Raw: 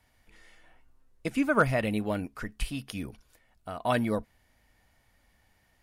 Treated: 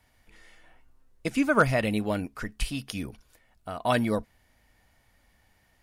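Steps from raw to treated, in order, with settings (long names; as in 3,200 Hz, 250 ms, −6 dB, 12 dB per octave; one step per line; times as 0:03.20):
dynamic equaliser 5,700 Hz, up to +5 dB, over −52 dBFS, Q 0.94
level +2 dB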